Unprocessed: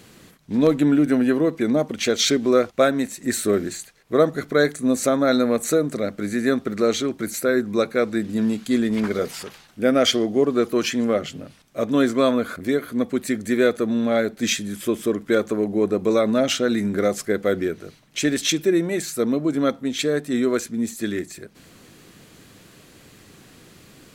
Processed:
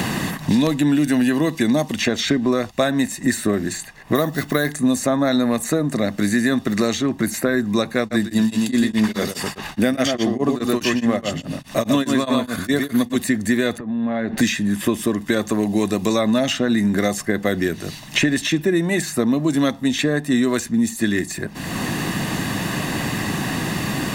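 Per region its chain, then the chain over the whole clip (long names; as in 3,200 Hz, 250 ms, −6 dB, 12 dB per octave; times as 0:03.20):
0:04.15–0:04.69: high-shelf EQ 11,000 Hz +9 dB + bad sample-rate conversion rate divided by 3×, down none, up hold
0:07.99–0:13.23: single-tap delay 119 ms −5 dB + tremolo along a rectified sine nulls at 4.8 Hz
0:13.78–0:14.38: downward compressor 10 to 1, threshold −33 dBFS + low-pass filter 1,800 Hz + double-tracking delay 13 ms −12.5 dB
whole clip: comb filter 1.1 ms, depth 57%; boost into a limiter +10 dB; multiband upward and downward compressor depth 100%; level −7 dB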